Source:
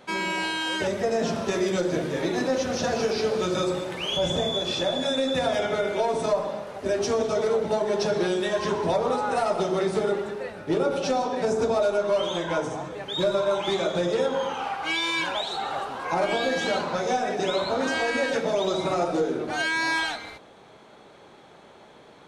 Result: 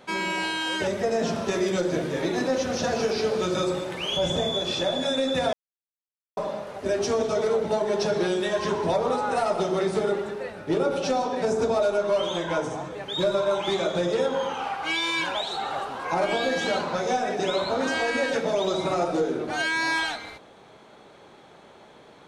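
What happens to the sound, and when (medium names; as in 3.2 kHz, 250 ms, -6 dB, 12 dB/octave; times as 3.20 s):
5.53–6.37 s: mute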